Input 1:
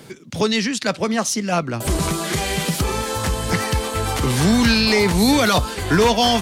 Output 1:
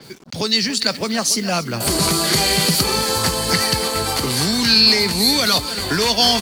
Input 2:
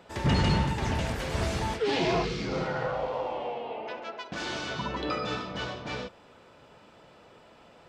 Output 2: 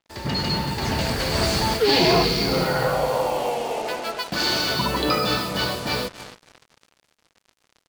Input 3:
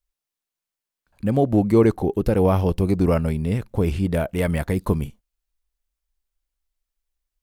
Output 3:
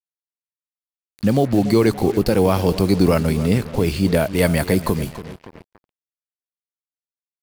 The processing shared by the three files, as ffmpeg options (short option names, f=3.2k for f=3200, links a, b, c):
-filter_complex "[0:a]equalizer=f=4.5k:w=5.6:g=14,acrossover=split=130|1600|6700[a][b][c][d];[a]acompressor=threshold=-35dB:ratio=6[e];[b]alimiter=limit=-14.5dB:level=0:latency=1:release=340[f];[d]asplit=2[g][h];[h]adelay=20,volume=-3dB[i];[g][i]amix=inputs=2:normalize=0[j];[e][f][c][j]amix=inputs=4:normalize=0,asplit=2[k][l];[l]adelay=285,lowpass=f=4.9k:p=1,volume=-14dB,asplit=2[m][n];[n]adelay=285,lowpass=f=4.9k:p=1,volume=0.44,asplit=2[o][p];[p]adelay=285,lowpass=f=4.9k:p=1,volume=0.44,asplit=2[q][r];[r]adelay=285,lowpass=f=4.9k:p=1,volume=0.44[s];[k][m][o][q][s]amix=inputs=5:normalize=0,acrusher=bits=6:mix=0:aa=0.5,dynaudnorm=f=130:g=13:m=10dB,adynamicequalizer=threshold=0.0316:dfrequency=7500:dqfactor=0.7:tfrequency=7500:tqfactor=0.7:attack=5:release=100:ratio=0.375:range=2:mode=boostabove:tftype=highshelf,volume=-1dB"